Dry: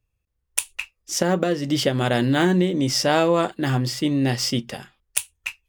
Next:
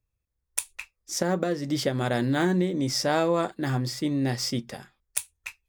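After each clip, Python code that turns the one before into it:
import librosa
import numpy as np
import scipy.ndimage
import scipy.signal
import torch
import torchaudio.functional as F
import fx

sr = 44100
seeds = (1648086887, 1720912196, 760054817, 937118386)

y = fx.peak_eq(x, sr, hz=2900.0, db=-10.5, octaves=0.24)
y = y * 10.0 ** (-5.0 / 20.0)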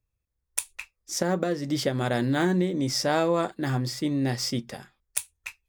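y = x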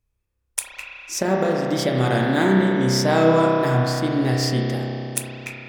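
y = fx.wow_flutter(x, sr, seeds[0], rate_hz=2.1, depth_cents=59.0)
y = fx.rev_spring(y, sr, rt60_s=3.1, pass_ms=(31,), chirp_ms=55, drr_db=-2.0)
y = y * 10.0 ** (3.0 / 20.0)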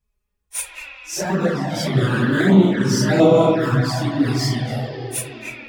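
y = fx.phase_scramble(x, sr, seeds[1], window_ms=100)
y = fx.env_flanger(y, sr, rest_ms=4.8, full_db=-13.0)
y = y * 10.0 ** (4.0 / 20.0)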